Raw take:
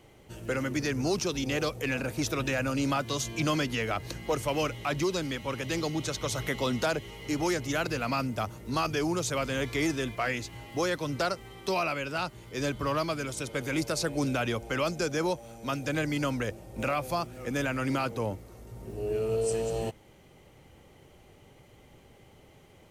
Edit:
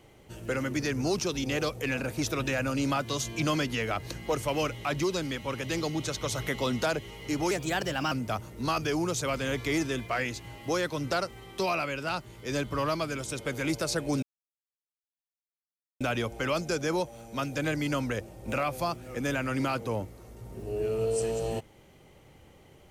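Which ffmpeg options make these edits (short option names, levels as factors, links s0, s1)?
-filter_complex "[0:a]asplit=4[s0][s1][s2][s3];[s0]atrim=end=7.514[s4];[s1]atrim=start=7.51:end=8.2,asetpts=PTS-STARTPTS,asetrate=50274,aresample=44100,atrim=end_sample=26692,asetpts=PTS-STARTPTS[s5];[s2]atrim=start=8.196:end=14.31,asetpts=PTS-STARTPTS,afade=t=out:st=6.11:d=0.004:c=hsin,apad=pad_dur=1.78[s6];[s3]atrim=start=14.31,asetpts=PTS-STARTPTS,afade=t=in:d=0.004:c=hsin[s7];[s4][s5]acrossfade=d=0.004:c1=hsin:c2=hsin[s8];[s6][s7]concat=n=2:v=0:a=1[s9];[s8][s9]acrossfade=d=0.004:c1=hsin:c2=hsin"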